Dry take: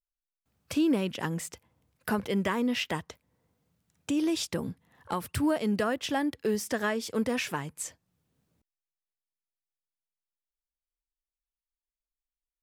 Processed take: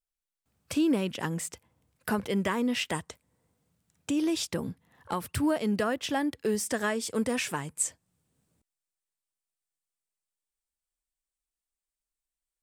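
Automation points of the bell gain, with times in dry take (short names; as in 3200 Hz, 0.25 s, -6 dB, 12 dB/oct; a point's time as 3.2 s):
bell 8400 Hz 0.48 oct
2.61 s +4.5 dB
3 s +13 dB
4.19 s +2 dB
6.16 s +2 dB
6.75 s +10 dB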